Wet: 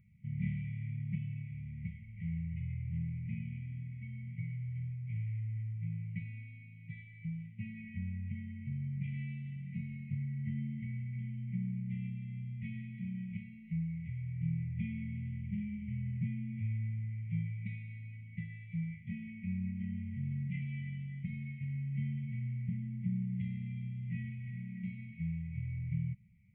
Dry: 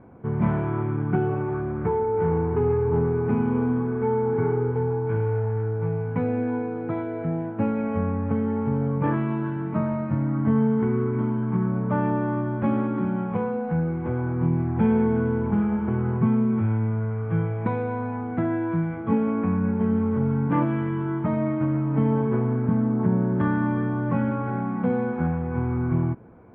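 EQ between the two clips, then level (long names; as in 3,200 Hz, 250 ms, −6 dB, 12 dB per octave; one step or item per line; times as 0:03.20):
linear-phase brick-wall band-stop 210–1,900 Hz
low-shelf EQ 360 Hz −7 dB
phaser with its sweep stopped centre 2,000 Hz, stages 4
−4.5 dB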